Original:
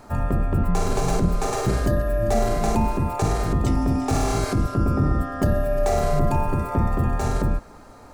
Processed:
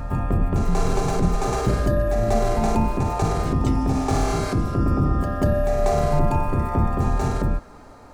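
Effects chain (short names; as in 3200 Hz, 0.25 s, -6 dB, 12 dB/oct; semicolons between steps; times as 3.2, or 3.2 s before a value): high shelf 7700 Hz -6.5 dB; reverse echo 0.191 s -7 dB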